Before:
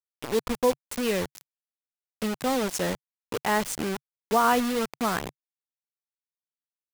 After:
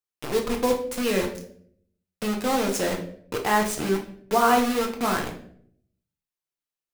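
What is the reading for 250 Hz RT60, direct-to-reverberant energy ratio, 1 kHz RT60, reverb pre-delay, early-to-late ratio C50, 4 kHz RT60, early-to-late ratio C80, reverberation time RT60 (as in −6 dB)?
0.80 s, 0.5 dB, 0.50 s, 6 ms, 9.0 dB, 0.45 s, 13.5 dB, 0.60 s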